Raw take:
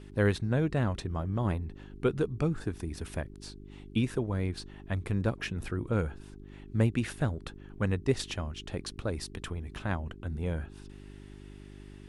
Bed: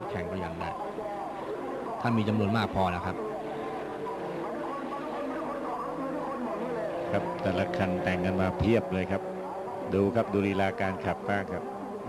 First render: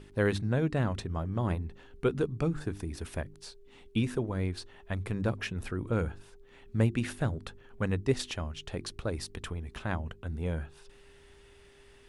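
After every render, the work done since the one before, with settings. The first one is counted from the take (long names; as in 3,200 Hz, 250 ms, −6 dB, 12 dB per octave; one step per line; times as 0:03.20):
hum removal 50 Hz, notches 7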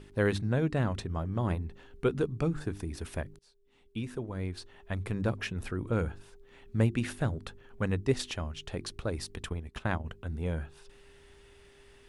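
0:03.39–0:05.03: fade in, from −22 dB
0:09.43–0:10.05: transient designer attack +4 dB, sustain −11 dB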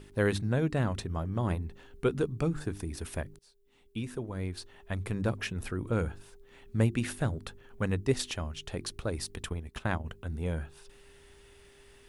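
high-shelf EQ 9,100 Hz +9.5 dB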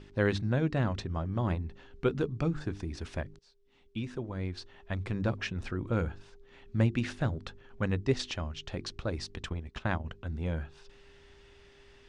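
low-pass filter 6,100 Hz 24 dB per octave
notch filter 440 Hz, Q 13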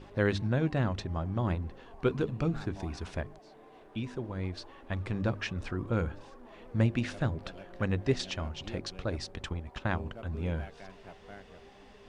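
mix in bed −20 dB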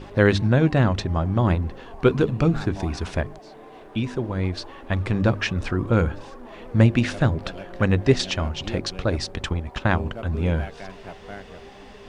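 level +10.5 dB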